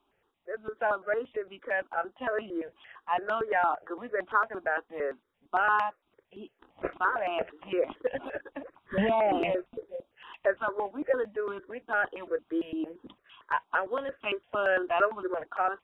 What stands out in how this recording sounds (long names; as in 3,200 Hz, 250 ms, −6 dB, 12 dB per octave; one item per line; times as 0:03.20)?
notches that jump at a steady rate 8.8 Hz 510–1,800 Hz